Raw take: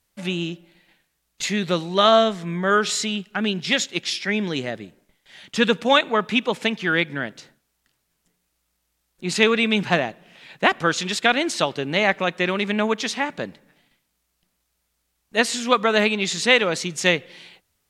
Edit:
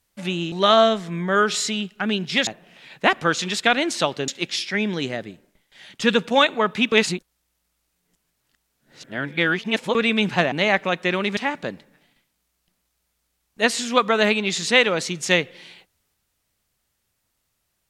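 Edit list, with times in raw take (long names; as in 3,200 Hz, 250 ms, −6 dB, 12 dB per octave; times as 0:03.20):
0:00.52–0:01.87: remove
0:06.46–0:09.49: reverse
0:10.06–0:11.87: move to 0:03.82
0:12.72–0:13.12: remove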